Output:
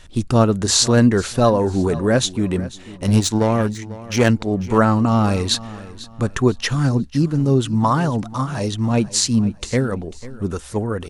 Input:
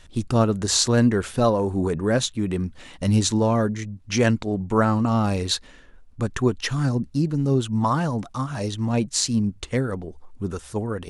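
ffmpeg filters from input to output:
ffmpeg -i in.wav -filter_complex "[0:a]asettb=1/sr,asplit=3[link_01][link_02][link_03];[link_01]atrim=end=2.604[link_04];[link_02]atrim=start=2.6:end=4.29,asetpts=PTS-STARTPTS,afade=type=in:duration=0.004:curve=qsin,afade=type=out:start_time=1.686:duration=0.004:curve=qsin,aeval=exprs='0.531*(cos(1*acos(clip(val(0)/0.531,-1,1)))-cos(1*PI/2))+0.0376*(cos(7*acos(clip(val(0)/0.531,-1,1)))-cos(7*PI/2))':channel_layout=same[link_05];[link_03]atrim=start=4.286[link_06];[link_04][link_05]acrossfade=duration=0.004:curve1=hsin:curve2=qsin[link_07];[link_07][link_06]acrossfade=duration=0.004:curve1=qsin:curve2=hsin,aecho=1:1:495|990|1485:0.133|0.0427|0.0137,volume=4.5dB" out.wav

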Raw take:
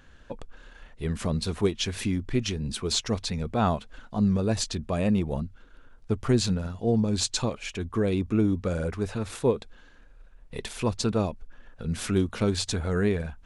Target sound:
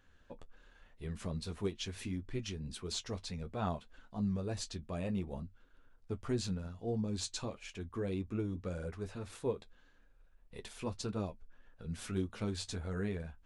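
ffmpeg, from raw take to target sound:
ffmpeg -i in.wav -af "flanger=delay=9.9:depth=2.4:regen=-38:speed=1.7:shape=triangular,volume=-8.5dB" out.wav

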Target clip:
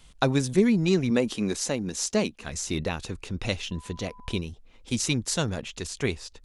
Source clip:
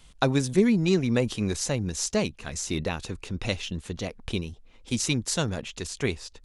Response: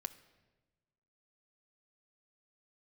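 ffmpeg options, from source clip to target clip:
-filter_complex "[0:a]asettb=1/sr,asplit=3[link_01][link_02][link_03];[link_01]atrim=end=1.104[link_04];[link_02]atrim=start=1.1:end=2.45,asetpts=PTS-STARTPTS,afade=type=in:duration=0.004:curve=qsin,afade=type=out:start_time=1.346:duration=0.004:curve=qsin,lowshelf=frequency=160:width_type=q:width=1.5:gain=-8.5[link_05];[link_03]atrim=start=2.446[link_06];[link_04][link_05]acrossfade=duration=0.004:curve1=hsin:curve2=qsin[link_07];[link_07][link_06]acrossfade=duration=0.004:curve1=qsin:curve2=hsin,asettb=1/sr,asplit=3[link_08][link_09][link_10];[link_08]atrim=end=3.714[link_11];[link_09]atrim=start=3.71:end=4.38,asetpts=PTS-STARTPTS,afade=type=in:duration=0.004:curve=qsin,afade=type=out:start_time=0.666:duration=0.004:curve=qsin,aeval=exprs='val(0)+0.00355*sin(2*PI*1000*n/s)':channel_layout=same[link_12];[link_10]atrim=start=4.376[link_13];[link_11][link_12]acrossfade=duration=0.004:curve1=hsin:curve2=qsin[link_14];[link_14][link_13]acrossfade=duration=0.004:curve1=qsin:curve2=hsin"

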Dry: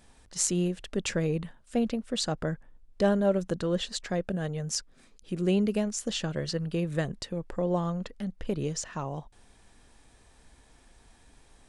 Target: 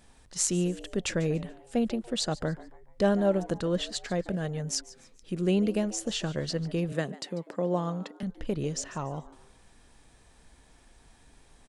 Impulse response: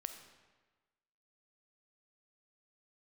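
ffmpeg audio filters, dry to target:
-filter_complex "[0:a]asettb=1/sr,asplit=3[link_01][link_02][link_03];[link_01]atrim=end=6.924[link_04];[link_02]atrim=start=6.92:end=8.23,asetpts=PTS-STARTPTS,afade=type=in:duration=0.004:curve=qsin,afade=type=out:start_time=1.306:duration=0.004:curve=qsin,highpass=frequency=160:width=0.5412,highpass=frequency=160:width=1.3066[link_05];[link_03]atrim=start=8.226[link_06];[link_04][link_05]acrossfade=duration=0.004:curve1=hsin:curve2=qsin[link_07];[link_07][link_06]acrossfade=duration=0.004:curve1=qsin:curve2=hsin,asplit=4[link_08][link_09][link_10][link_11];[link_09]adelay=144,afreqshift=120,volume=-18.5dB[link_12];[link_10]adelay=288,afreqshift=240,volume=-27.4dB[link_13];[link_11]adelay=432,afreqshift=360,volume=-36.2dB[link_14];[link_08][link_12][link_13][link_14]amix=inputs=4:normalize=0"

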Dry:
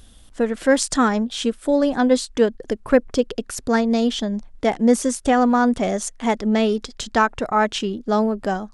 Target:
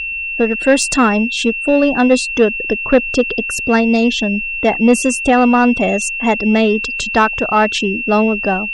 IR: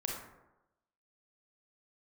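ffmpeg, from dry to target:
-af "afftfilt=real='re*gte(hypot(re,im),0.0178)':imag='im*gte(hypot(re,im),0.0178)':win_size=1024:overlap=0.75,aeval=exprs='val(0)+0.0501*sin(2*PI*2700*n/s)':channel_layout=same,acontrast=55"

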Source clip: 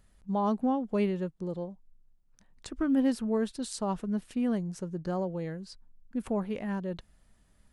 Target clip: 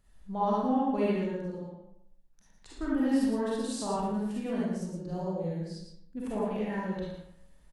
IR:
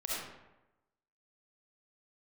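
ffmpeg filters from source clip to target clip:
-filter_complex "[0:a]asettb=1/sr,asplit=3[link_01][link_02][link_03];[link_01]atrim=end=1.504[link_04];[link_02]atrim=start=1.5:end=2.75,asetpts=PTS-STARTPTS,afade=type=in:duration=0.004:curve=qsin,afade=type=out:start_time=1.246:duration=0.004:curve=qsin,acompressor=threshold=-48dB:ratio=4[link_05];[link_03]atrim=start=2.746[link_06];[link_04][link_05]acrossfade=duration=0.004:curve1=hsin:curve2=qsin[link_07];[link_07][link_06]acrossfade=duration=0.004:curve1=qsin:curve2=hsin,asettb=1/sr,asplit=3[link_08][link_09][link_10];[link_08]atrim=end=4.684[link_11];[link_09]atrim=start=4.68:end=6.17,asetpts=PTS-STARTPTS,afade=type=in:duration=0.004:curve=qsin,afade=type=out:start_time=1.486:duration=0.004:curve=qsin,equalizer=frequency=1500:width_type=o:width=1.7:gain=-11[link_12];[link_10]atrim=start=6.166[link_13];[link_11][link_12]acrossfade=duration=0.004:curve1=hsin:curve2=qsin[link_14];[link_14][link_13]acrossfade=duration=0.004:curve1=qsin:curve2=hsin,aecho=1:1:114:0.473[link_15];[1:a]atrim=start_sample=2205,asetrate=61740,aresample=44100[link_16];[link_15][link_16]afir=irnorm=-1:irlink=0"

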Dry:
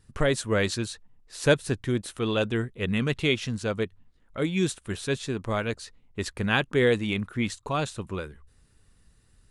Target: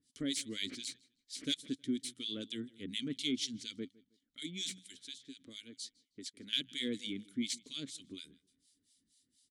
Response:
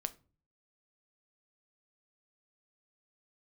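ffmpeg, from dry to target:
-filter_complex "[0:a]asettb=1/sr,asplit=3[link_01][link_02][link_03];[link_01]atrim=end=4.864[link_04];[link_02]atrim=start=4.86:end=6.53,asetpts=PTS-STARTPTS,afade=type=in:duration=0.004:curve=qsin,afade=type=out:start_time=1.666:duration=0.004:curve=qsin,acrossover=split=340|2700[link_05][link_06][link_07];[link_05]acompressor=threshold=-42dB:ratio=4[link_08];[link_06]acompressor=threshold=-37dB:ratio=4[link_09];[link_07]acompressor=threshold=-45dB:ratio=4[link_10];[link_08][link_09][link_10]amix=inputs=3:normalize=0[link_11];[link_03]atrim=start=6.526[link_12];[link_04][link_11]acrossfade=duration=0.004:curve1=hsin:curve2=qsin[link_13];[link_13][link_12]acrossfade=duration=0.004:curve1=qsin:curve2=hsin,aexciter=amount=15.1:drive=5.7:freq=3800,bandreject=frequency=62.13:width_type=h:width=4,bandreject=frequency=124.26:width_type=h:width=4,bandreject=frequency=186.39:width_type=h:width=4,asoftclip=type=hard:threshold=-10.5dB,acrossover=split=1700[link_14][link_15];[link_14]aeval=exprs='val(0)*(1-1/2+1/2*cos(2*PI*4.2*n/s))':channel_layout=same[link_16];[link_15]aeval=exprs='val(0)*(1-1/2-1/2*cos(2*PI*4.2*n/s))':channel_layout=same[link_17];[link_16][link_17]amix=inputs=2:normalize=0,asplit=3[link_18][link_19][link_20];[link_18]bandpass=frequency=270:width_type=q:width=8,volume=0dB[link_21];[link_19]bandpass=frequency=2290:width_type=q:width=8,volume=-6dB[link_22];[link_20]bandpass=frequency=3010:width_type=q:width=8,volume=-9dB[link_23];[link_21][link_22][link_23]amix=inputs=3:normalize=0,highshelf=frequency=6900:gain=4,asplit=2[link_24][link_25];[link_25]adelay=158,lowpass=frequency=4400:poles=1,volume=-23dB,asplit=2[link_26][link_27];[link_27]adelay=158,lowpass=frequency=4400:poles=1,volume=0.31[link_28];[link_26][link_28]amix=inputs=2:normalize=0[link_29];[link_24][link_29]amix=inputs=2:normalize=0,volume=1.5dB"

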